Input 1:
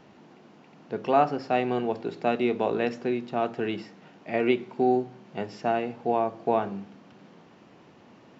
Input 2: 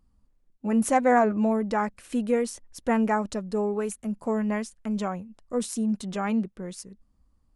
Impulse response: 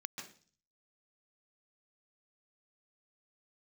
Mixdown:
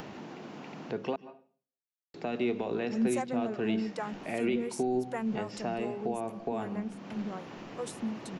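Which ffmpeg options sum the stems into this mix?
-filter_complex "[0:a]acompressor=mode=upward:threshold=0.0316:ratio=2.5,alimiter=limit=0.141:level=0:latency=1:release=36,volume=0.668,asplit=3[s0][s1][s2];[s0]atrim=end=1.16,asetpts=PTS-STARTPTS,afade=t=out:st=1.156:d=0.004:c=hsin[s3];[s1]atrim=start=1.16:end=2.14,asetpts=PTS-STARTPTS,volume=0[s4];[s2]atrim=start=2.14,asetpts=PTS-STARTPTS,afade=t=in:d=0.004:c=hsin[s5];[s3][s4][s5]concat=n=3:v=0:a=1,asplit=2[s6][s7];[s7]volume=0.282[s8];[1:a]acrossover=split=400[s9][s10];[s9]aeval=exprs='val(0)*(1-1/2+1/2*cos(2*PI*2.6*n/s))':c=same[s11];[s10]aeval=exprs='val(0)*(1-1/2-1/2*cos(2*PI*2.6*n/s))':c=same[s12];[s11][s12]amix=inputs=2:normalize=0,adelay=2250,volume=0.596[s13];[2:a]atrim=start_sample=2205[s14];[s8][s14]afir=irnorm=-1:irlink=0[s15];[s6][s13][s15]amix=inputs=3:normalize=0,acrossover=split=380|3000[s16][s17][s18];[s17]acompressor=threshold=0.02:ratio=6[s19];[s16][s19][s18]amix=inputs=3:normalize=0"

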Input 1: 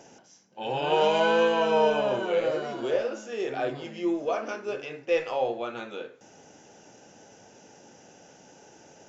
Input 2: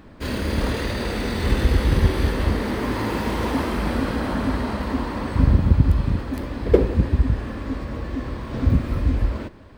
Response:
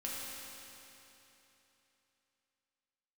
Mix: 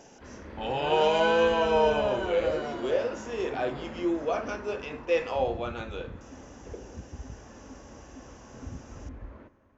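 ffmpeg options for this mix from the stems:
-filter_complex "[0:a]volume=0.891,asplit=2[s0][s1];[s1]volume=0.0668[s2];[1:a]lowpass=1800,lowshelf=f=320:g=-7.5,alimiter=limit=0.158:level=0:latency=1:release=253,volume=0.178,asplit=2[s3][s4];[s4]volume=0.0891[s5];[2:a]atrim=start_sample=2205[s6];[s2][s5]amix=inputs=2:normalize=0[s7];[s7][s6]afir=irnorm=-1:irlink=0[s8];[s0][s3][s8]amix=inputs=3:normalize=0"

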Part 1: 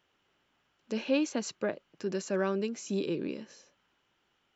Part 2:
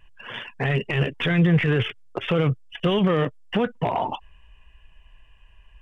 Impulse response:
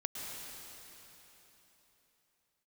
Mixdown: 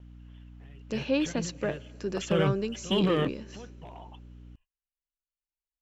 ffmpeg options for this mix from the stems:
-filter_complex "[0:a]aeval=exprs='val(0)+0.00398*(sin(2*PI*60*n/s)+sin(2*PI*2*60*n/s)/2+sin(2*PI*3*60*n/s)/3+sin(2*PI*4*60*n/s)/4+sin(2*PI*5*60*n/s)/5)':c=same,volume=1.06,asplit=3[s0][s1][s2];[s1]volume=0.0794[s3];[1:a]aexciter=amount=1.8:drive=6:freq=2900,volume=0.531,afade=t=in:st=1.74:d=0.61:silence=0.251189[s4];[s2]apad=whole_len=256469[s5];[s4][s5]sidechaingate=range=0.126:threshold=0.0178:ratio=16:detection=peak[s6];[2:a]atrim=start_sample=2205[s7];[s3][s7]afir=irnorm=-1:irlink=0[s8];[s0][s6][s8]amix=inputs=3:normalize=0,agate=range=0.0355:threshold=0.00126:ratio=16:detection=peak"

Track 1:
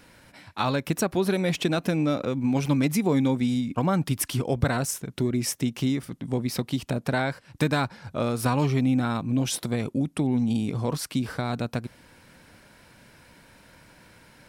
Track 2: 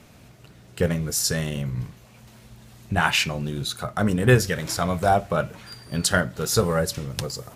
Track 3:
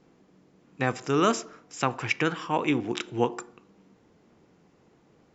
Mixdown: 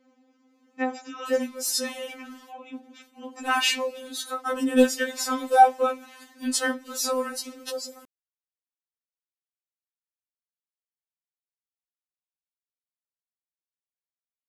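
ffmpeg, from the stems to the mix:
-filter_complex "[1:a]agate=range=0.0631:threshold=0.00631:ratio=16:detection=peak,dynaudnorm=f=110:g=31:m=3.76,adelay=500,volume=0.841[s0];[2:a]alimiter=limit=0.158:level=0:latency=1:release=49,volume=3.55,afade=t=out:st=0.85:d=0.62:silence=0.266073,afade=t=in:st=3.12:d=0.27:silence=0.266073[s1];[s0][s1]amix=inputs=2:normalize=0,highpass=72,asoftclip=type=hard:threshold=0.501,afftfilt=real='re*3.46*eq(mod(b,12),0)':imag='im*3.46*eq(mod(b,12),0)':win_size=2048:overlap=0.75"

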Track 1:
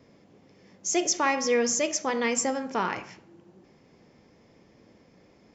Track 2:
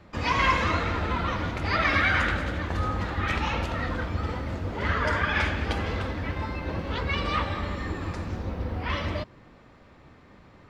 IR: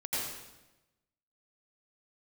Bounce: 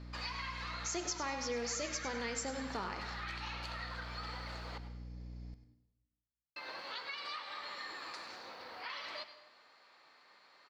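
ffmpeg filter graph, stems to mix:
-filter_complex "[0:a]aeval=exprs='val(0)+0.0112*(sin(2*PI*60*n/s)+sin(2*PI*2*60*n/s)/2+sin(2*PI*3*60*n/s)/3+sin(2*PI*4*60*n/s)/4+sin(2*PI*5*60*n/s)/5)':c=same,volume=0.376,asplit=3[s0][s1][s2];[s1]volume=0.119[s3];[s2]volume=0.251[s4];[1:a]highpass=890,acompressor=threshold=0.0141:ratio=4,volume=0.531,asplit=3[s5][s6][s7];[s5]atrim=end=4.78,asetpts=PTS-STARTPTS,afade=t=out:st=4.776:d=0.004:c=hsin[s8];[s6]atrim=start=4.78:end=6.56,asetpts=PTS-STARTPTS,volume=0[s9];[s7]atrim=start=6.56,asetpts=PTS-STARTPTS,afade=t=in:d=0.004:c=hsin[s10];[s8][s9][s10]concat=n=3:v=0:a=1,asplit=3[s11][s12][s13];[s12]volume=0.126[s14];[s13]volume=0.188[s15];[2:a]atrim=start_sample=2205[s16];[s3][s14]amix=inputs=2:normalize=0[s17];[s17][s16]afir=irnorm=-1:irlink=0[s18];[s4][s15]amix=inputs=2:normalize=0,aecho=0:1:99|198|297|396:1|0.31|0.0961|0.0298[s19];[s0][s11][s18][s19]amix=inputs=4:normalize=0,equalizer=f=4400:t=o:w=0.28:g=14,acompressor=threshold=0.0126:ratio=2.5"

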